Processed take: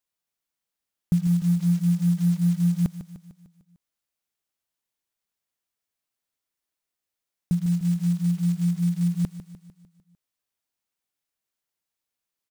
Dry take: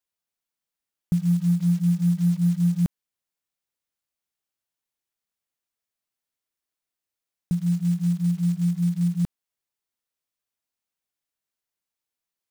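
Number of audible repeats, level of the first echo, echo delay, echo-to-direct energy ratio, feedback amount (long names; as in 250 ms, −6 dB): 5, −12.0 dB, 150 ms, −10.5 dB, 54%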